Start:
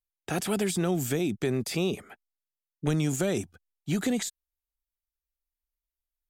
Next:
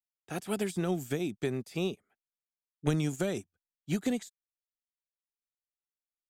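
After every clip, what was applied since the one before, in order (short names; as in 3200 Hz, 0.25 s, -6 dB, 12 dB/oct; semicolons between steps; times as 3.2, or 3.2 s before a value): upward expander 2.5:1, over -41 dBFS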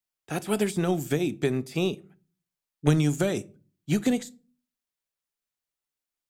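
shoebox room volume 220 m³, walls furnished, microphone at 0.31 m; gain +6 dB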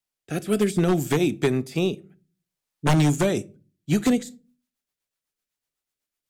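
rotary speaker horn 0.6 Hz, later 8 Hz, at 3.76; wavefolder -18.5 dBFS; gain +6 dB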